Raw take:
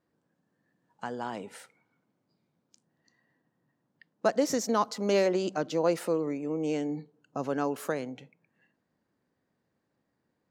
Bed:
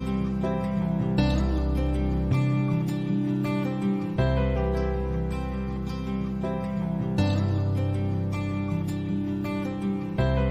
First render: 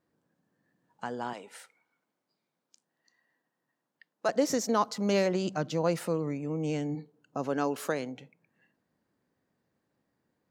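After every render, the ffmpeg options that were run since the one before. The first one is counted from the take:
ffmpeg -i in.wav -filter_complex "[0:a]asettb=1/sr,asplit=3[link_01][link_02][link_03];[link_01]atrim=end=1.334[link_04];[link_02]atrim=start=1.33:end=4.29,asetpts=PTS-STARTPTS,afade=type=in:duration=0.004:curve=qsin,afade=type=out:start_time=2.956:duration=0.004:curve=qsin,highpass=frequency=760:poles=1[link_05];[link_03]atrim=start=4.286[link_06];[link_04][link_05]acrossfade=duration=0.004:curve1=hsin:curve2=qsin[link_07];[link_07][link_06]acrossfade=duration=0.004:curve1=qsin:curve2=hsin,asplit=3[link_08][link_09][link_10];[link_08]afade=type=out:start_time=4.91:duration=0.02[link_11];[link_09]asubboost=boost=5.5:cutoff=140,afade=type=in:start_time=4.91:duration=0.02,afade=type=out:start_time=6.94:duration=0.02[link_12];[link_10]afade=type=in:start_time=6.94:duration=0.02[link_13];[link_11][link_12][link_13]amix=inputs=3:normalize=0,asettb=1/sr,asplit=3[link_14][link_15][link_16];[link_14]atrim=end=7.574[link_17];[link_15]atrim=start=7.57:end=8.12,asetpts=PTS-STARTPTS,afade=type=in:duration=0.004:curve=qsin,afade=type=out:start_time=0.546:duration=0.004:curve=qsin,equalizer=frequency=4200:width_type=o:width=1.9:gain=4.5[link_18];[link_16]atrim=start=8.116[link_19];[link_17][link_18]acrossfade=duration=0.004:curve1=hsin:curve2=qsin[link_20];[link_20][link_19]acrossfade=duration=0.004:curve1=qsin:curve2=hsin" out.wav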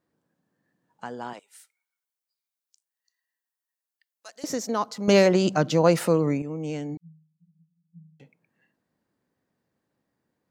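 ffmpeg -i in.wav -filter_complex "[0:a]asettb=1/sr,asplit=3[link_01][link_02][link_03];[link_01]atrim=end=1.394[link_04];[link_02]atrim=start=1.39:end=4.44,asetpts=PTS-STARTPTS,afade=type=in:duration=0.004:curve=qsin,afade=type=out:start_time=3.046:duration=0.004:curve=qsin,aderivative[link_05];[link_03]atrim=start=4.436[link_06];[link_04][link_05]acrossfade=duration=0.004:curve1=hsin:curve2=qsin[link_07];[link_07][link_06]acrossfade=duration=0.004:curve1=qsin:curve2=hsin,asettb=1/sr,asplit=3[link_08][link_09][link_10];[link_08]atrim=end=6.974[link_11];[link_09]atrim=start=6.97:end=8.2,asetpts=PTS-STARTPTS,afade=type=in:duration=0.004:curve=qsin,afade=type=out:start_time=1.226:duration=0.004:curve=qsin,asuperpass=centerf=170:order=20:qfactor=5.8[link_12];[link_10]atrim=start=8.196[link_13];[link_11][link_12]acrossfade=duration=0.004:curve1=hsin:curve2=qsin[link_14];[link_14][link_13]acrossfade=duration=0.004:curve1=qsin:curve2=hsin,asplit=3[link_15][link_16][link_17];[link_15]atrim=end=5.082[link_18];[link_16]atrim=start=5.078:end=6.422,asetpts=PTS-STARTPTS,volume=9dB[link_19];[link_17]atrim=start=6.418[link_20];[link_18][link_19]acrossfade=duration=0.004:curve1=hsin:curve2=hsin[link_21];[link_21][link_20]acrossfade=duration=0.004:curve1=hsin:curve2=hsin" out.wav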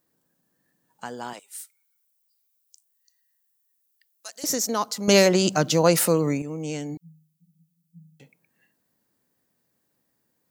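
ffmpeg -i in.wav -af "aemphasis=mode=production:type=75kf" out.wav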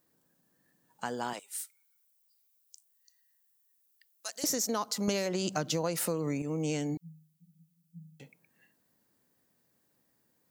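ffmpeg -i in.wav -af "acompressor=threshold=-27dB:ratio=20" out.wav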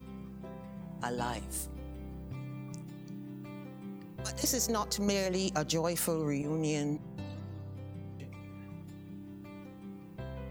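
ffmpeg -i in.wav -i bed.wav -filter_complex "[1:a]volume=-18.5dB[link_01];[0:a][link_01]amix=inputs=2:normalize=0" out.wav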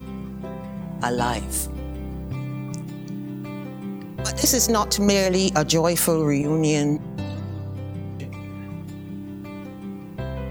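ffmpeg -i in.wav -af "volume=12dB" out.wav

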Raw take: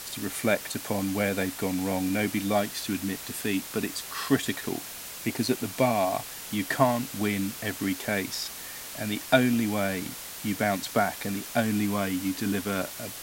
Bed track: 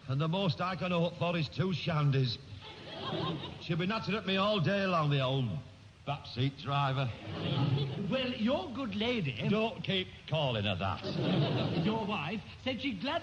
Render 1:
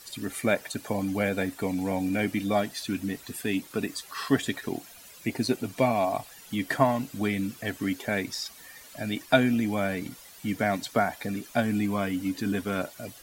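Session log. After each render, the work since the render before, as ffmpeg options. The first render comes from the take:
ffmpeg -i in.wav -af "afftdn=noise_reduction=13:noise_floor=-40" out.wav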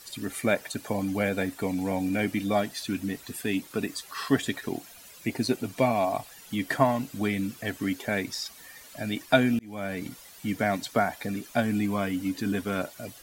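ffmpeg -i in.wav -filter_complex "[0:a]asplit=2[link_01][link_02];[link_01]atrim=end=9.59,asetpts=PTS-STARTPTS,afade=type=out:start_time=9.586:duration=0.004:curve=hsin[link_03];[link_02]atrim=start=9.59,asetpts=PTS-STARTPTS,afade=type=in:duration=0.46[link_04];[link_03][link_04]concat=n=2:v=0:a=1" out.wav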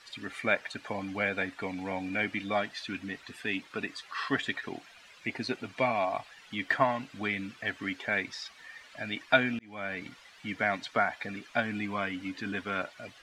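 ffmpeg -i in.wav -af "lowpass=2100,tiltshelf=frequency=1100:gain=-10" out.wav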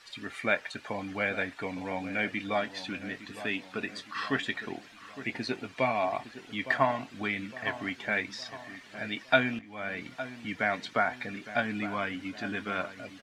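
ffmpeg -i in.wav -filter_complex "[0:a]asplit=2[link_01][link_02];[link_02]adelay=23,volume=-14dB[link_03];[link_01][link_03]amix=inputs=2:normalize=0,asplit=2[link_04][link_05];[link_05]adelay=861,lowpass=frequency=1600:poles=1,volume=-12.5dB,asplit=2[link_06][link_07];[link_07]adelay=861,lowpass=frequency=1600:poles=1,volume=0.52,asplit=2[link_08][link_09];[link_09]adelay=861,lowpass=frequency=1600:poles=1,volume=0.52,asplit=2[link_10][link_11];[link_11]adelay=861,lowpass=frequency=1600:poles=1,volume=0.52,asplit=2[link_12][link_13];[link_13]adelay=861,lowpass=frequency=1600:poles=1,volume=0.52[link_14];[link_04][link_06][link_08][link_10][link_12][link_14]amix=inputs=6:normalize=0" out.wav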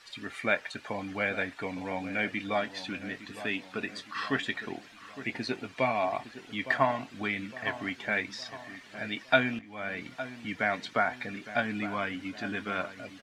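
ffmpeg -i in.wav -af anull out.wav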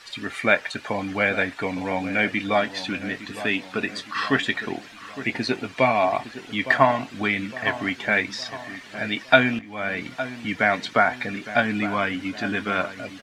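ffmpeg -i in.wav -af "volume=8.5dB,alimiter=limit=-1dB:level=0:latency=1" out.wav

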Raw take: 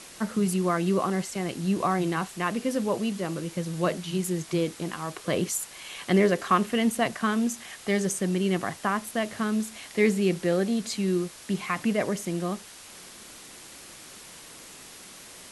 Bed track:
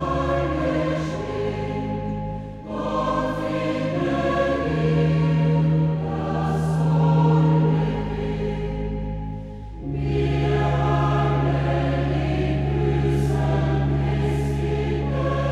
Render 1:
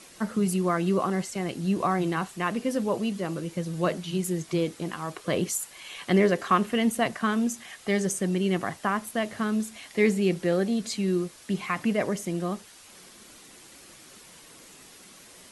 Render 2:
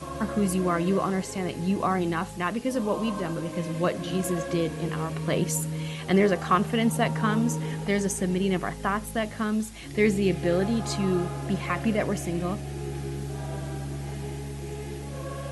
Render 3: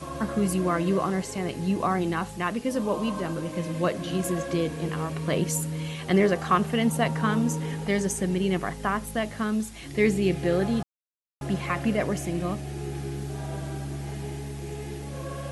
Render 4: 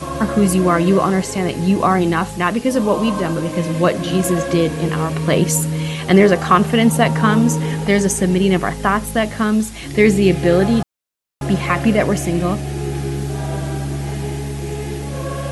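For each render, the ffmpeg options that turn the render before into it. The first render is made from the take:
ffmpeg -i in.wav -af "afftdn=noise_reduction=6:noise_floor=-47" out.wav
ffmpeg -i in.wav -i bed.wav -filter_complex "[1:a]volume=-12.5dB[link_01];[0:a][link_01]amix=inputs=2:normalize=0" out.wav
ffmpeg -i in.wav -filter_complex "[0:a]asplit=3[link_01][link_02][link_03];[link_01]atrim=end=10.83,asetpts=PTS-STARTPTS,afade=type=out:start_time=10.826:duration=0.004:curve=hsin[link_04];[link_02]atrim=start=10.83:end=11.41,asetpts=PTS-STARTPTS,volume=0[link_05];[link_03]atrim=start=11.41,asetpts=PTS-STARTPTS,afade=type=in:duration=0.004:curve=hsin[link_06];[link_04][link_05][link_06]concat=n=3:v=0:a=1" out.wav
ffmpeg -i in.wav -af "volume=10.5dB,alimiter=limit=-1dB:level=0:latency=1" out.wav

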